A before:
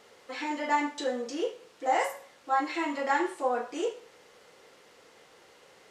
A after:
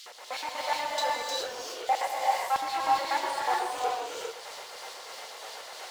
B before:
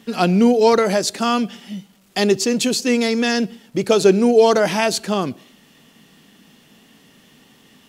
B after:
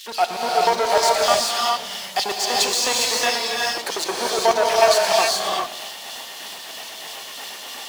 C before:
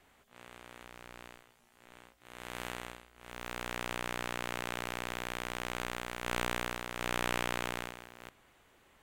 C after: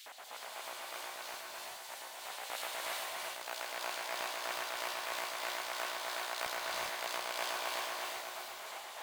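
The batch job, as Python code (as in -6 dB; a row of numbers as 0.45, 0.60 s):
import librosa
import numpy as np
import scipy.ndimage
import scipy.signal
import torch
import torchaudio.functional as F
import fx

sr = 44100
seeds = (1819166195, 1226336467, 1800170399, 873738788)

y = fx.power_curve(x, sr, exponent=0.5)
y = fx.filter_lfo_highpass(y, sr, shape='square', hz=8.2, low_hz=720.0, high_hz=4000.0, q=2.0)
y = y * (1.0 - 0.36 / 2.0 + 0.36 / 2.0 * np.cos(2.0 * np.pi * 3.1 * (np.arange(len(y)) / sr)))
y = fx.rev_gated(y, sr, seeds[0], gate_ms=440, shape='rising', drr_db=-2.5)
y = F.gain(torch.from_numpy(y), -8.5).numpy()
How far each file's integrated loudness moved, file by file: 0.0, -2.0, -1.5 LU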